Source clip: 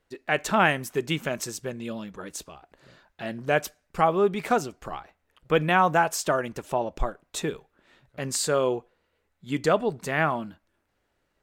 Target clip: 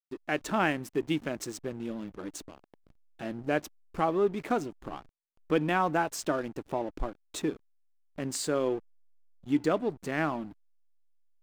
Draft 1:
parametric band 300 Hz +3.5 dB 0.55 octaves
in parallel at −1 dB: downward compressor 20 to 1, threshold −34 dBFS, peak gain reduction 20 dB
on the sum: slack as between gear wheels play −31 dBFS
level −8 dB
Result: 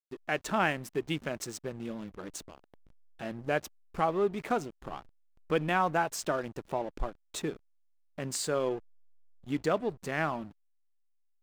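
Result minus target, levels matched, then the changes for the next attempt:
250 Hz band −3.0 dB
change: parametric band 300 Hz +11 dB 0.55 octaves

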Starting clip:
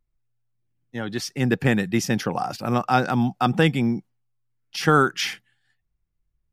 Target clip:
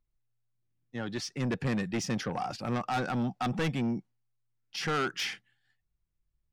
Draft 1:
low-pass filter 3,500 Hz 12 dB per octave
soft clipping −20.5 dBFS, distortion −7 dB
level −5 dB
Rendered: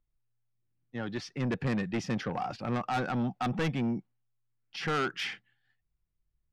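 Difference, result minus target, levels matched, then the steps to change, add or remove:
8,000 Hz band −7.5 dB
change: low-pass filter 7,400 Hz 12 dB per octave

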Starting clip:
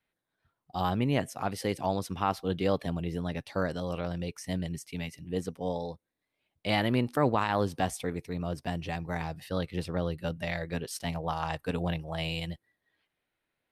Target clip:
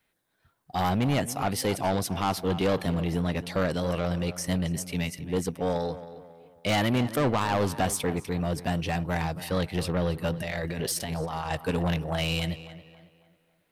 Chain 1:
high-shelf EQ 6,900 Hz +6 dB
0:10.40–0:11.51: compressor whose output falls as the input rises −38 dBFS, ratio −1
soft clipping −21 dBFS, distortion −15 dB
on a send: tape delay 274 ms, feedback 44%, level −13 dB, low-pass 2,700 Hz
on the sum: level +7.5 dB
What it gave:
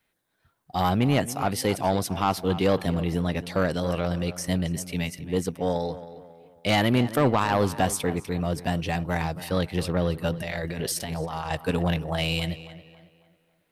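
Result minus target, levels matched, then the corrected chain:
soft clipping: distortion −6 dB
high-shelf EQ 6,900 Hz +6 dB
0:10.40–0:11.51: compressor whose output falls as the input rises −38 dBFS, ratio −1
soft clipping −27.5 dBFS, distortion −9 dB
on a send: tape delay 274 ms, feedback 44%, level −13 dB, low-pass 2,700 Hz
on the sum: level +7.5 dB

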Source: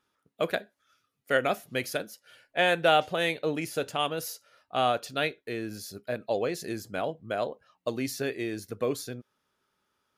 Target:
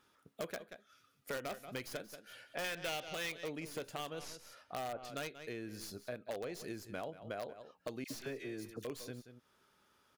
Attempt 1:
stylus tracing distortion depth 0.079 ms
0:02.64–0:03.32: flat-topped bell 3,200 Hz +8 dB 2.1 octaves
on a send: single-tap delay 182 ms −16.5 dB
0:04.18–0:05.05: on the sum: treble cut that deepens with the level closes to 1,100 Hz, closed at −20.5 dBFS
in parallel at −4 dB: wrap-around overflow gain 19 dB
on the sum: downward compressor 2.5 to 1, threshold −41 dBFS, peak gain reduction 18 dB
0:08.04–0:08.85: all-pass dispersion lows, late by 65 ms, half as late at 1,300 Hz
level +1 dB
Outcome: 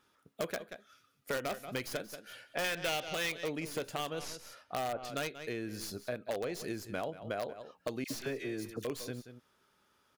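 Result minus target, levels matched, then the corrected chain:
downward compressor: peak gain reduction −5.5 dB
stylus tracing distortion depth 0.079 ms
0:02.64–0:03.32: flat-topped bell 3,200 Hz +8 dB 2.1 octaves
on a send: single-tap delay 182 ms −16.5 dB
0:04.18–0:05.05: on the sum: treble cut that deepens with the level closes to 1,100 Hz, closed at −20.5 dBFS
in parallel at −4 dB: wrap-around overflow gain 19 dB
on the sum: downward compressor 2.5 to 1, threshold −50 dBFS, peak gain reduction 23 dB
0:08.04–0:08.85: all-pass dispersion lows, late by 65 ms, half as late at 1,300 Hz
level +1 dB

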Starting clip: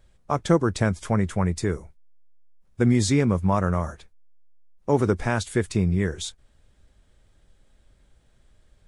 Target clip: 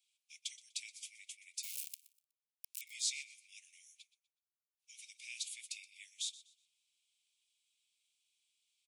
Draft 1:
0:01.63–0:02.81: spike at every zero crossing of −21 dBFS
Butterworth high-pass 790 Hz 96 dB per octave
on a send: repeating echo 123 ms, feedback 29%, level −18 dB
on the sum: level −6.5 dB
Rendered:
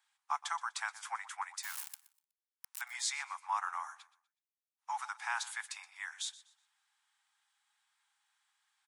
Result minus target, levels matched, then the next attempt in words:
2,000 Hz band +8.0 dB
0:01.63–0:02.81: spike at every zero crossing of −21 dBFS
Butterworth high-pass 2,300 Hz 96 dB per octave
on a send: repeating echo 123 ms, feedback 29%, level −18 dB
on the sum: level −6.5 dB

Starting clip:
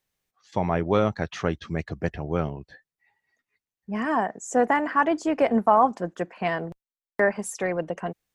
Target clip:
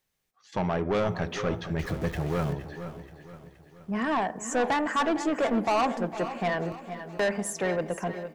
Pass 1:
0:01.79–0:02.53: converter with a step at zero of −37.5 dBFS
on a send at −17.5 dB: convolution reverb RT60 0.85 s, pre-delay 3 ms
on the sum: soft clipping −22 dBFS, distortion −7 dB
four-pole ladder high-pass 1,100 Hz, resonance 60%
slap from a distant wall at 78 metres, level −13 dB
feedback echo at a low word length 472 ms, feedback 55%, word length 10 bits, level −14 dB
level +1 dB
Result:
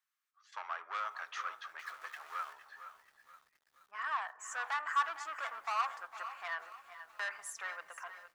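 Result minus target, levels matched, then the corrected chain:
1,000 Hz band +3.0 dB
0:01.79–0:02.53: converter with a step at zero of −37.5 dBFS
on a send at −17.5 dB: convolution reverb RT60 0.85 s, pre-delay 3 ms
on the sum: soft clipping −22 dBFS, distortion −7 dB
slap from a distant wall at 78 metres, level −13 dB
feedback echo at a low word length 472 ms, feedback 55%, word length 10 bits, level −14 dB
level +1 dB

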